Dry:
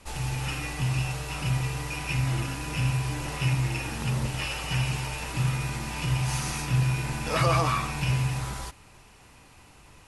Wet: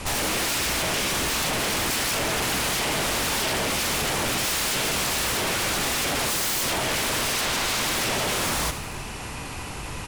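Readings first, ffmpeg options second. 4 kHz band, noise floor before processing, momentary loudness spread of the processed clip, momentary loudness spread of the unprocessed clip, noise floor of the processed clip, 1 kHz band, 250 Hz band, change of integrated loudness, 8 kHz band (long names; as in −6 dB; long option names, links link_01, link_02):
+11.5 dB, −53 dBFS, 7 LU, 6 LU, −34 dBFS, +5.0 dB, +2.5 dB, +5.0 dB, +12.5 dB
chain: -filter_complex "[0:a]alimiter=limit=-22.5dB:level=0:latency=1:release=56,aeval=exprs='0.075*sin(PI/2*5.62*val(0)/0.075)':channel_layout=same,asplit=8[link_01][link_02][link_03][link_04][link_05][link_06][link_07][link_08];[link_02]adelay=82,afreqshift=95,volume=-13dB[link_09];[link_03]adelay=164,afreqshift=190,volume=-17.4dB[link_10];[link_04]adelay=246,afreqshift=285,volume=-21.9dB[link_11];[link_05]adelay=328,afreqshift=380,volume=-26.3dB[link_12];[link_06]adelay=410,afreqshift=475,volume=-30.7dB[link_13];[link_07]adelay=492,afreqshift=570,volume=-35.2dB[link_14];[link_08]adelay=574,afreqshift=665,volume=-39.6dB[link_15];[link_01][link_09][link_10][link_11][link_12][link_13][link_14][link_15]amix=inputs=8:normalize=0"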